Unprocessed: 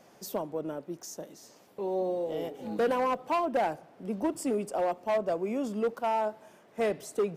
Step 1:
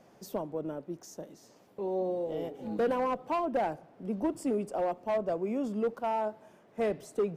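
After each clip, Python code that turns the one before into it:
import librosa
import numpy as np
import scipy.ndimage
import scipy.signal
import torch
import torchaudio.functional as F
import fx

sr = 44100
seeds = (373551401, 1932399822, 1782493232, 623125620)

y = fx.tilt_eq(x, sr, slope=-1.5)
y = y * librosa.db_to_amplitude(-3.0)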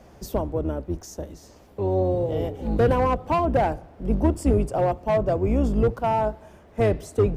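y = fx.octave_divider(x, sr, octaves=2, level_db=3.0)
y = y * librosa.db_to_amplitude(8.0)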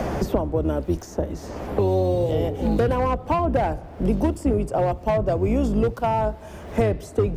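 y = fx.band_squash(x, sr, depth_pct=100)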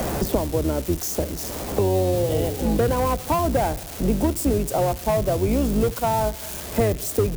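y = x + 0.5 * 10.0 ** (-20.5 / 20.0) * np.diff(np.sign(x), prepend=np.sign(x[:1]))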